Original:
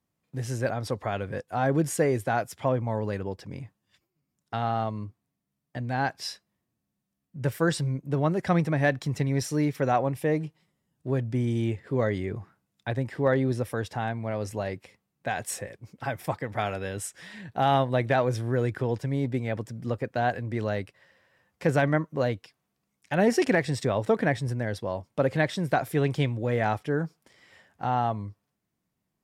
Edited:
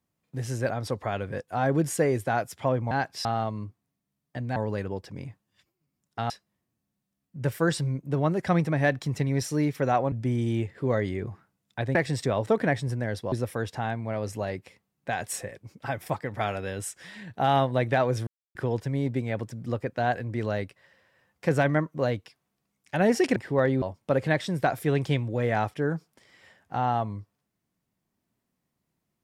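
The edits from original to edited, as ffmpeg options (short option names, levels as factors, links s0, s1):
-filter_complex "[0:a]asplit=12[s0][s1][s2][s3][s4][s5][s6][s7][s8][s9][s10][s11];[s0]atrim=end=2.912[s12];[s1]atrim=start=5.958:end=6.302[s13];[s2]atrim=start=4.648:end=5.962[s14];[s3]atrim=start=2.908:end=4.652[s15];[s4]atrim=start=6.298:end=10.122[s16];[s5]atrim=start=11.208:end=13.042[s17];[s6]atrim=start=23.538:end=24.912[s18];[s7]atrim=start=13.498:end=18.45,asetpts=PTS-STARTPTS,afade=t=out:st=4.948:d=0.004:c=hsin[s19];[s8]atrim=start=18.45:end=18.73,asetpts=PTS-STARTPTS,volume=0[s20];[s9]atrim=start=18.73:end=23.542,asetpts=PTS-STARTPTS,afade=t=in:d=0.004:c=hsin[s21];[s10]atrim=start=13.038:end=13.502[s22];[s11]atrim=start=24.908[s23];[s12][s13]acrossfade=d=0.004:c1=hsin:c2=hsin[s24];[s24][s14]acrossfade=d=0.004:c1=hsin:c2=hsin[s25];[s25][s15]acrossfade=d=0.004:c1=hsin:c2=hsin[s26];[s26][s16]acrossfade=d=0.004:c1=hsin:c2=hsin[s27];[s27][s17]acrossfade=d=0.004:c1=hsin:c2=hsin[s28];[s28][s18]acrossfade=d=0.004:c1=hsin:c2=hsin[s29];[s19][s20][s21]concat=n=3:v=0:a=1[s30];[s29][s30]acrossfade=d=0.004:c1=hsin:c2=hsin[s31];[s31][s22]acrossfade=d=0.004:c1=hsin:c2=hsin[s32];[s32][s23]acrossfade=d=0.004:c1=hsin:c2=hsin"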